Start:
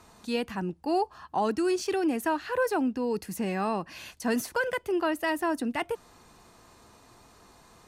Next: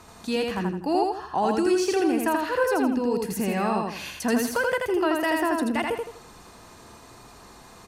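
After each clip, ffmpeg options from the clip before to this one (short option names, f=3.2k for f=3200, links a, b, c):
-filter_complex "[0:a]asplit=2[a][b];[b]acompressor=threshold=-35dB:ratio=6,volume=0dB[c];[a][c]amix=inputs=2:normalize=0,aecho=1:1:82|164|246|328:0.708|0.241|0.0818|0.0278"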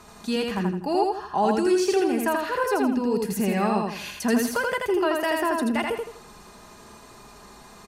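-af "aecho=1:1:4.9:0.41"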